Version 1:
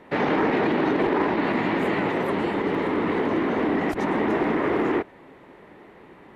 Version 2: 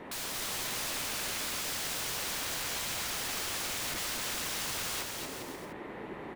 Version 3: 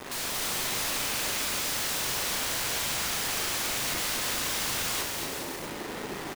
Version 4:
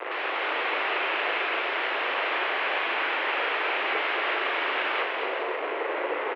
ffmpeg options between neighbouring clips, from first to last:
-filter_complex "[0:a]acrossover=split=1100|2200[a][b][c];[a]acompressor=threshold=-33dB:ratio=4[d];[b]acompressor=threshold=-36dB:ratio=4[e];[c]acompressor=threshold=-46dB:ratio=4[f];[d][e][f]amix=inputs=3:normalize=0,aeval=exprs='(mod(63.1*val(0)+1,2)-1)/63.1':c=same,aecho=1:1:230|402.5|531.9|628.9|701.7:0.631|0.398|0.251|0.158|0.1,volume=3dB"
-filter_complex "[0:a]acrusher=bits=6:mix=0:aa=0.000001,asplit=2[a][b];[b]adelay=39,volume=-6dB[c];[a][c]amix=inputs=2:normalize=0,volume=4dB"
-af "highpass=f=240:t=q:w=0.5412,highpass=f=240:t=q:w=1.307,lowpass=f=2.7k:t=q:w=0.5176,lowpass=f=2.7k:t=q:w=0.7071,lowpass=f=2.7k:t=q:w=1.932,afreqshift=110,volume=8.5dB"

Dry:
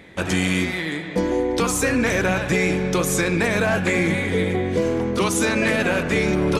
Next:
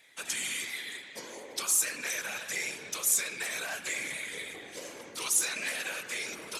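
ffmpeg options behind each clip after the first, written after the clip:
-af "acontrast=37,afftfilt=real='hypot(re,im)*cos(2*PI*random(0))':imag='hypot(re,im)*sin(2*PI*random(1))':win_size=512:overlap=0.75,aderivative"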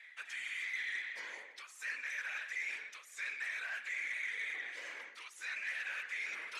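-af "areverse,acompressor=threshold=-40dB:ratio=16,areverse,bandpass=f=1.9k:t=q:w=2.9:csg=0,asoftclip=type=tanh:threshold=-39.5dB,volume=9dB"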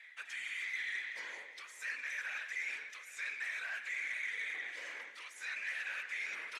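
-af "aecho=1:1:410|820|1230|1640|2050:0.178|0.0996|0.0558|0.0312|0.0175"

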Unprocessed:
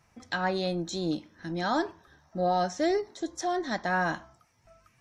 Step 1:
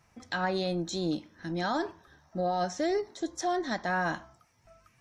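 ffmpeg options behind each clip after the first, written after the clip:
-af "alimiter=limit=-21dB:level=0:latency=1"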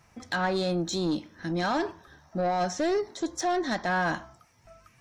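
-af "asoftclip=type=tanh:threshold=-25.5dB,volume=5dB"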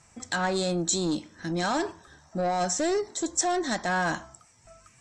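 -af "lowpass=f=7.8k:t=q:w=9.7"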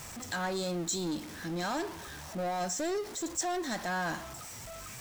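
-af "aeval=exprs='val(0)+0.5*0.0282*sgn(val(0))':c=same,volume=-8.5dB"

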